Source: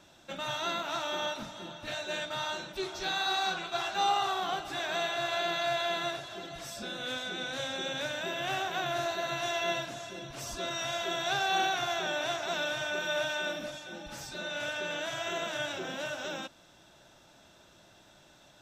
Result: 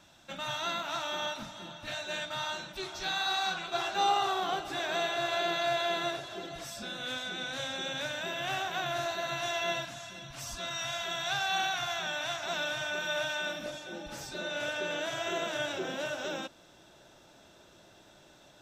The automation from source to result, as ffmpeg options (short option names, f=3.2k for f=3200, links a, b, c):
-af "asetnsamples=n=441:p=0,asendcmd='3.68 equalizer g 3.5;6.64 equalizer g -4.5;9.85 equalizer g -13.5;12.44 equalizer g -5.5;13.66 equalizer g 4.5',equalizer=f=410:t=o:w=0.99:g=-6"